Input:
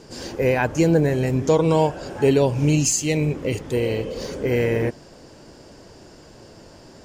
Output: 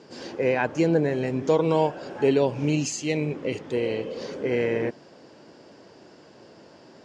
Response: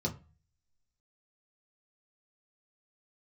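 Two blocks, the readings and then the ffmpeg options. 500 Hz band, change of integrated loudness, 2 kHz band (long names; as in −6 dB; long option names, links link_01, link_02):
−3.0 dB, −4.5 dB, −3.0 dB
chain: -af "highpass=180,lowpass=4600,volume=-3dB"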